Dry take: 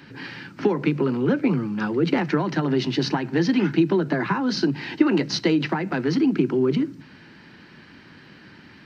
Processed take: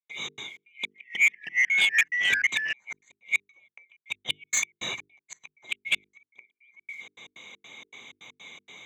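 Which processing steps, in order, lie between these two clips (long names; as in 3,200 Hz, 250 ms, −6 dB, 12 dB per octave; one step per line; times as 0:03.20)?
neighbouring bands swapped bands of 2,000 Hz
high-pass filter 120 Hz 24 dB per octave
gate with flip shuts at −13 dBFS, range −40 dB
dynamic equaliser 640 Hz, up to −6 dB, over −47 dBFS, Q 0.73
gate pattern ".xx.xx.xx.x" 159 BPM −60 dB
mains-hum notches 50/100/150/200/250/300/350/400/450 Hz
0:00.62–0:02.73: delay with pitch and tempo change per echo 288 ms, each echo −2 semitones, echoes 3
soft clipping −21.5 dBFS, distortion −13 dB
expander for the loud parts 1.5 to 1, over −39 dBFS
level +8 dB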